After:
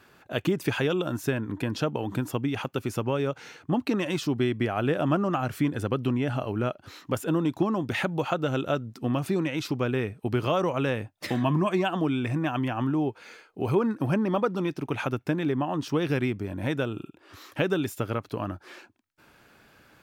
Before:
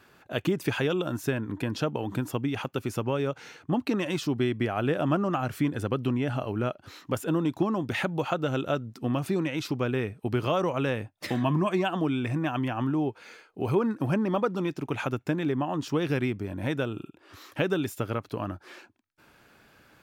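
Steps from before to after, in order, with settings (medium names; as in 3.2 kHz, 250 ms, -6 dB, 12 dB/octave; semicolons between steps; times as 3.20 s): 13.90–16.11 s: band-stop 7.1 kHz, Q 10; trim +1 dB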